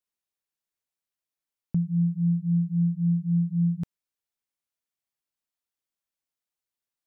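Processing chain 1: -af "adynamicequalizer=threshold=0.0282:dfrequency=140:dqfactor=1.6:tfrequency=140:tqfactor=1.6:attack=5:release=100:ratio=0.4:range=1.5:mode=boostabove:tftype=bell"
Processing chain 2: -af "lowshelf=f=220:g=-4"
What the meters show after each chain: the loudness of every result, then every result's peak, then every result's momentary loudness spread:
-24.0, -28.5 LUFS; -16.0, -20.5 dBFS; 7, 6 LU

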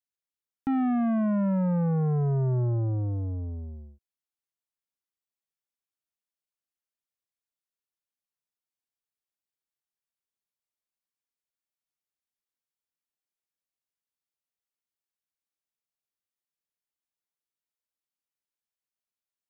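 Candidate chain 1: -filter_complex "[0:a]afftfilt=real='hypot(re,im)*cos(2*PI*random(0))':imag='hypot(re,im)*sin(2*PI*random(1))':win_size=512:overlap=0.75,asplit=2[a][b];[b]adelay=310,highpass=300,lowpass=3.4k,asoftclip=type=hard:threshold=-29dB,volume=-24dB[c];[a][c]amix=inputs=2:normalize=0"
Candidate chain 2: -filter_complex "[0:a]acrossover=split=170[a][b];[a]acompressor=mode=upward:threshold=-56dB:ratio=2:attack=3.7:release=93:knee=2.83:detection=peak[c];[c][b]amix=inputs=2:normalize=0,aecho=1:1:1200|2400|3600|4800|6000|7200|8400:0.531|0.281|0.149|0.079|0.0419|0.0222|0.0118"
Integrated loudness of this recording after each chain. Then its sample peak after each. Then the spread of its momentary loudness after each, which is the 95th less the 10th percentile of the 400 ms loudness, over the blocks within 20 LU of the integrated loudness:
-33.0, -28.0 LUFS; -19.5, -16.5 dBFS; 11, 20 LU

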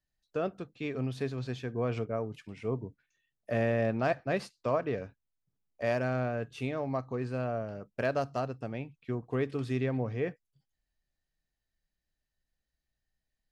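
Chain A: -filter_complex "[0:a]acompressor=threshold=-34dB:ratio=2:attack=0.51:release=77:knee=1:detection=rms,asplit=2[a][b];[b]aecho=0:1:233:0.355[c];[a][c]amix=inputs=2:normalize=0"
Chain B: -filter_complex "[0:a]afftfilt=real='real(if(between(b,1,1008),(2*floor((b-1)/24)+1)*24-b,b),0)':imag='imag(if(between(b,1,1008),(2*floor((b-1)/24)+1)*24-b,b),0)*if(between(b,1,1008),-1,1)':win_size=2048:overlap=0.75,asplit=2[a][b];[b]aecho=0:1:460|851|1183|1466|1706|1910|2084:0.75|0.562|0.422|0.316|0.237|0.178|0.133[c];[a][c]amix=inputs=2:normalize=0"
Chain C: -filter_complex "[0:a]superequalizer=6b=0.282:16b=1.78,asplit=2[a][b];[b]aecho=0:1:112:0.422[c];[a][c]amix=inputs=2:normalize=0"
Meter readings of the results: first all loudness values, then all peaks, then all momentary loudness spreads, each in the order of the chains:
-38.5, -31.5, -33.5 LUFS; -23.5, -15.0, -16.0 dBFS; 8, 9, 9 LU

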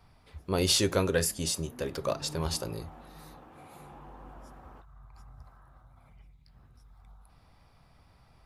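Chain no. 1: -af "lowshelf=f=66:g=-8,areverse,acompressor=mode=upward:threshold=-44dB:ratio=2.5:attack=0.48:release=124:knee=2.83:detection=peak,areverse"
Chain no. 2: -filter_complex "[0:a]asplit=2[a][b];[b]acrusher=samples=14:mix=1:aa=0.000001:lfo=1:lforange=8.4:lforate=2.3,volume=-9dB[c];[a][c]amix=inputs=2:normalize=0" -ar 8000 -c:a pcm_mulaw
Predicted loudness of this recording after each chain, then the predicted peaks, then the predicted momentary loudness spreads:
-29.5, -29.5 LUFS; -11.5, -11.5 dBFS; 16, 23 LU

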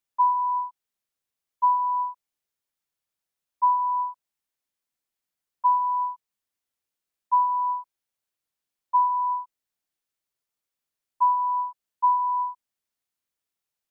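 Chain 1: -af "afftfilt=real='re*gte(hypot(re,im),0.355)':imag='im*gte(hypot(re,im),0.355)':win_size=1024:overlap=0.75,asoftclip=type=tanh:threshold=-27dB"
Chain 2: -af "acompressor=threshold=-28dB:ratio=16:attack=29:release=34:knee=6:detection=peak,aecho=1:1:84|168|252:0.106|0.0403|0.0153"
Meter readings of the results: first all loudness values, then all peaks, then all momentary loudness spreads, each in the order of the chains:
-31.5, -29.5 LUFS; -27.0, -20.0 dBFS; 8, 9 LU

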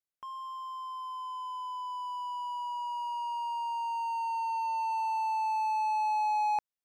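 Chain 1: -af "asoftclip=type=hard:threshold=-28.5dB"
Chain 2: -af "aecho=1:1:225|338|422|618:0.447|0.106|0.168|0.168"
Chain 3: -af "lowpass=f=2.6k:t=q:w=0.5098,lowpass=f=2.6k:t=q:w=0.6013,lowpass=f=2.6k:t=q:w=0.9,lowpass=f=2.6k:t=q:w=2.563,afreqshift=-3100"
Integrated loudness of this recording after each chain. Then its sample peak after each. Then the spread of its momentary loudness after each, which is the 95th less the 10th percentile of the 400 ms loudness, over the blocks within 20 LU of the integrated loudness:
-34.0, -32.0, -30.5 LUFS; -28.5, -20.0, -24.0 dBFS; 8, 10, 11 LU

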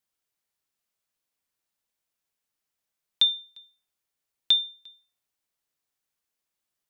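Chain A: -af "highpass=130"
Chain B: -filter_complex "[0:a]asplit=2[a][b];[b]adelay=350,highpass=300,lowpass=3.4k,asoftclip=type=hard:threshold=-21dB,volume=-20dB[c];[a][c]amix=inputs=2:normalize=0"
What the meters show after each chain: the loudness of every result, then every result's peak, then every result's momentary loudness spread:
-23.0, -23.0 LUFS; -11.0, -11.0 dBFS; 14, 14 LU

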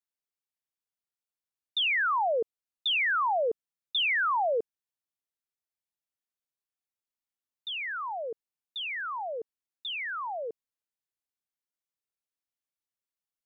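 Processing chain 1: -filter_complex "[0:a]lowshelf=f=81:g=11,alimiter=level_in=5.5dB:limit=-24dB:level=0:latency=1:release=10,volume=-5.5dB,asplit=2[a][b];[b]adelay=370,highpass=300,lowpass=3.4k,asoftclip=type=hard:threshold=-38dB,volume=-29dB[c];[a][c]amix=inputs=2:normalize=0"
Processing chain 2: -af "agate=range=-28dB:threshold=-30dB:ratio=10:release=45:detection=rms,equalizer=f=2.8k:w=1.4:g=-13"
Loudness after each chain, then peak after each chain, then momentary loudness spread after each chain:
-34.0, -31.0 LUFS; -29.5, -23.5 dBFS; 11, 14 LU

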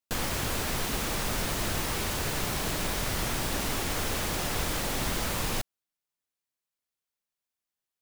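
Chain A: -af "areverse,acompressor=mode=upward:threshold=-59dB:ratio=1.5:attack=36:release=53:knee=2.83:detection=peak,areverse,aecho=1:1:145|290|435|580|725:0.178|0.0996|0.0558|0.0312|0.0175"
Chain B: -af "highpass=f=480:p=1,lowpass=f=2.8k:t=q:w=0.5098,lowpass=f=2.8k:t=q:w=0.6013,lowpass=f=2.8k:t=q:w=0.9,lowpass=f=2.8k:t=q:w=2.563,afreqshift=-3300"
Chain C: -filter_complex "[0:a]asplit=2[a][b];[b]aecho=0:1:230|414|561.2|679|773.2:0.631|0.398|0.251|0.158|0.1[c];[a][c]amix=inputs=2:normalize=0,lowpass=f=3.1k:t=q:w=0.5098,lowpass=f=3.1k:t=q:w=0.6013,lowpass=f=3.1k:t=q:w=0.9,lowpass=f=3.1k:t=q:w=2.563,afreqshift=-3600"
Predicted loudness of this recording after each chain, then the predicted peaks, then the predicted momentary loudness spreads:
-29.5, -34.5, -26.5 LUFS; -17.0, -23.0, -16.0 dBFS; 1, 0, 3 LU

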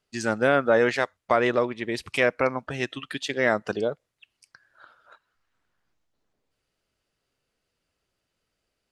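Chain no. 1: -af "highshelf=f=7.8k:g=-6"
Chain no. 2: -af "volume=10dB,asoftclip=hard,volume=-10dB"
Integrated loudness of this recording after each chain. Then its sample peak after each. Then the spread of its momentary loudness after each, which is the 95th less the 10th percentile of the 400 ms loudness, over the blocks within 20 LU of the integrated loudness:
-25.0, -25.0 LUFS; -7.0, -10.0 dBFS; 10, 10 LU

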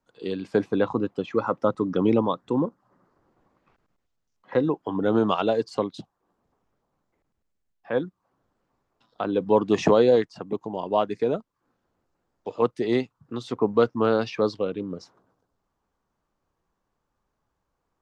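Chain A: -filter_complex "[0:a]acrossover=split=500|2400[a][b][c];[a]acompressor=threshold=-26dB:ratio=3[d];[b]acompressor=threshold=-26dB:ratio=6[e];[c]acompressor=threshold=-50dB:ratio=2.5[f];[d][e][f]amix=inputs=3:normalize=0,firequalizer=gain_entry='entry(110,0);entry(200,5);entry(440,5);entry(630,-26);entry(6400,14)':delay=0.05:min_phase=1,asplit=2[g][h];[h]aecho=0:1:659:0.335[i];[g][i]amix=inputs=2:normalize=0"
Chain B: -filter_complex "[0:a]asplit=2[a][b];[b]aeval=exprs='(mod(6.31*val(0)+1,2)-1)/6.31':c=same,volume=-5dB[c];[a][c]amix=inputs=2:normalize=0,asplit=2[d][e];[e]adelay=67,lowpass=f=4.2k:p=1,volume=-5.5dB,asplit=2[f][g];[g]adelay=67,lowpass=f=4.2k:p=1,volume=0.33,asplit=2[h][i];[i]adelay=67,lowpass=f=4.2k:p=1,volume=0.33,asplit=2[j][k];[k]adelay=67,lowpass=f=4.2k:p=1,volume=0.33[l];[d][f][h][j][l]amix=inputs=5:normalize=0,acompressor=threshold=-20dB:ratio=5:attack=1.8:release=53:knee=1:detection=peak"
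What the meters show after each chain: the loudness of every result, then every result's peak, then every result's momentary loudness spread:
-26.5, -26.0 LUFS; -9.5, -12.0 dBFS; 15, 8 LU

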